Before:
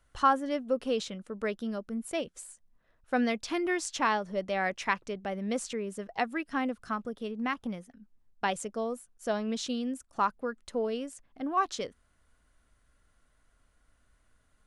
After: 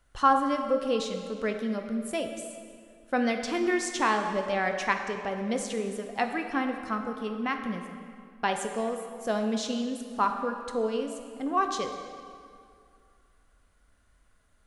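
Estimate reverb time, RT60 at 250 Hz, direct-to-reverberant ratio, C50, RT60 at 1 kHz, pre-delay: 2.3 s, 2.3 s, 4.5 dB, 6.0 dB, 2.3 s, 3 ms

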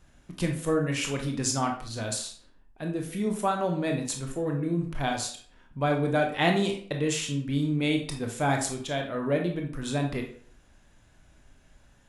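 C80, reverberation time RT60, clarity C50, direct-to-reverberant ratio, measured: 12.0 dB, 0.50 s, 6.5 dB, 2.0 dB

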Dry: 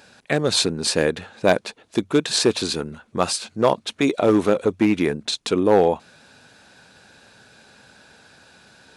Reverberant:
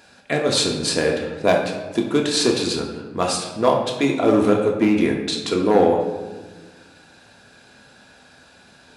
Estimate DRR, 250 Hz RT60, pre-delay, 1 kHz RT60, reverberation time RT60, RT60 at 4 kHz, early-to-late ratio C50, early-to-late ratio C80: 0.0 dB, 1.9 s, 3 ms, 1.2 s, 1.4 s, 0.75 s, 4.5 dB, 7.0 dB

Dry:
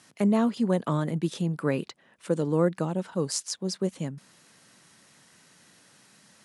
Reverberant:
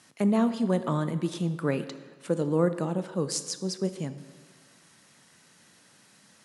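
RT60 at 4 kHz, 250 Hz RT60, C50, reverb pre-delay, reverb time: 1.1 s, 1.4 s, 12.5 dB, 17 ms, 1.5 s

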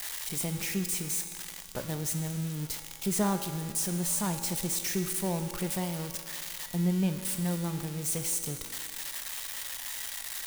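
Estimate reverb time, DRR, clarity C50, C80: 2.0 s, 6.0 dB, 8.0 dB, 9.0 dB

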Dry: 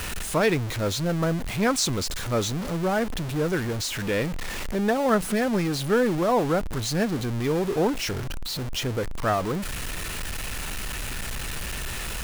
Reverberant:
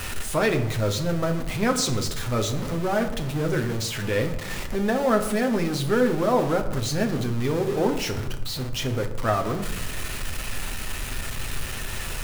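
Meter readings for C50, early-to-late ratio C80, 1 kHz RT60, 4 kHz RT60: 11.0 dB, 13.0 dB, 0.85 s, 0.50 s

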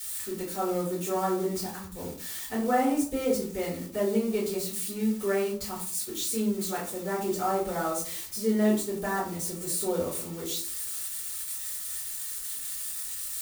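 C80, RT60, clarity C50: 10.0 dB, 0.50 s, 6.0 dB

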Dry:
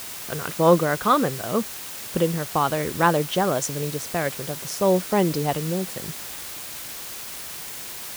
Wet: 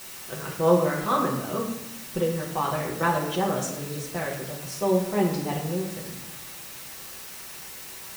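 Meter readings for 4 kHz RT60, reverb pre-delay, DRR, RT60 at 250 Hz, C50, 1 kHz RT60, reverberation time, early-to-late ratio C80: 0.55 s, 5 ms, -5.0 dB, 1.3 s, 5.0 dB, 0.85 s, 0.85 s, 8.0 dB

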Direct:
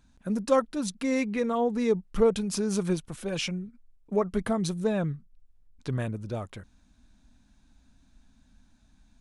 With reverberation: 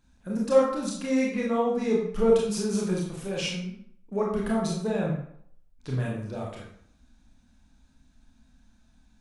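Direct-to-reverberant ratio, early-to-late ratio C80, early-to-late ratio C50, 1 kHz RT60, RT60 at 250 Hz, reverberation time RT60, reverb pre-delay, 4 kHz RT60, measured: -3.5 dB, 6.0 dB, 2.5 dB, 0.65 s, 0.60 s, 0.65 s, 25 ms, 0.50 s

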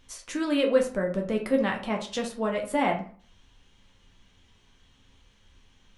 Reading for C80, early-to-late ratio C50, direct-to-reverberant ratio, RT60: 14.5 dB, 9.0 dB, 1.0 dB, 0.45 s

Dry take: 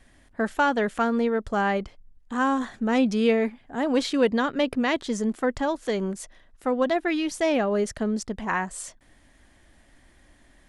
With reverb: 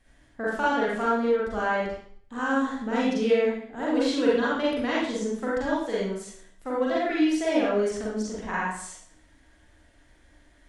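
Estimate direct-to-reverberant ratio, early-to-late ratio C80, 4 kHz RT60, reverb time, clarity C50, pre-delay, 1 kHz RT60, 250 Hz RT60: -7.0 dB, 3.5 dB, 0.55 s, 0.60 s, -1.0 dB, 36 ms, 0.60 s, 0.55 s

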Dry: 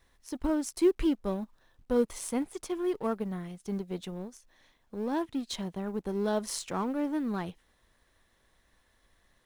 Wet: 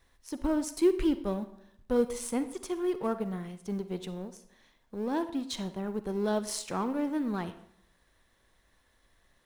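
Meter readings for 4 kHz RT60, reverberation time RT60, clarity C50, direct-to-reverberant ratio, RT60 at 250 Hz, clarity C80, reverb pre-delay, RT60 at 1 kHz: 0.50 s, 0.65 s, 12.5 dB, 11.5 dB, 0.75 s, 15.5 dB, 39 ms, 0.65 s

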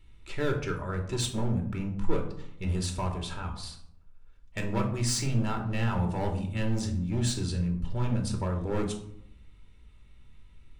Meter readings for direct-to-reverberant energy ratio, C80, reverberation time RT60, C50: 2.0 dB, 12.0 dB, 0.70 s, 9.0 dB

